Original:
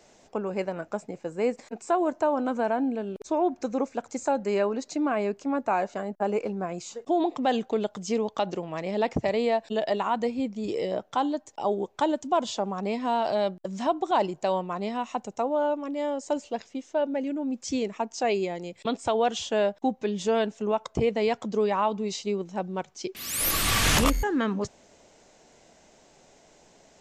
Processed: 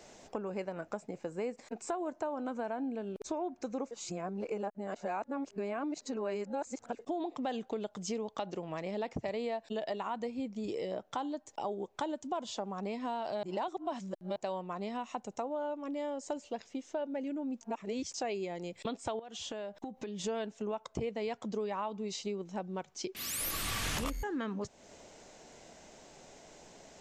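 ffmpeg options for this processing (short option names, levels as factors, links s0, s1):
-filter_complex "[0:a]asettb=1/sr,asplit=3[s0][s1][s2];[s0]atrim=end=19.194[s3];[s1]atrim=start=19.19:end=20.24,asetpts=PTS-STARTPTS,afade=t=in:d=0.004:c=qsin,afade=t=out:st=1.046:d=0.004:c=qsin,acompressor=threshold=0.0158:ratio=10:attack=3.2:release=140:knee=1:detection=peak[s4];[s2]atrim=start=20.236[s5];[s3][s4]acrossfade=d=0.004:c1=hsin:c2=qsin[s6];[s6][s5]acrossfade=d=0.004:c1=qsin:c2=hsin,asplit=7[s7][s8][s9][s10][s11][s12][s13];[s7]atrim=end=3.912[s14];[s8]atrim=start=3.908:end=6.992,asetpts=PTS-STARTPTS,areverse[s15];[s9]atrim=start=6.988:end=13.432[s16];[s10]atrim=start=13.428:end=14.362,asetpts=PTS-STARTPTS,areverse[s17];[s11]atrim=start=14.358:end=17.612[s18];[s12]atrim=start=17.608:end=18.142,asetpts=PTS-STARTPTS,areverse[s19];[s13]atrim=start=18.138[s20];[s14][s15]acrossfade=d=0.004:c1=hsin:c2=hsin[s21];[s21][s16]acrossfade=d=0.004:c1=hsin:c2=hsin[s22];[s22][s17]acrossfade=d=0.004:c1=hsin:c2=hsin[s23];[s23][s18]acrossfade=d=0.004:c1=hsin:c2=hsin[s24];[s24][s19]acrossfade=d=0.004:c1=hsin:c2=hsin[s25];[s25][s20]acrossfade=d=0.004:c1=hsin:c2=hsin,acompressor=threshold=0.01:ratio=3,volume=1.26"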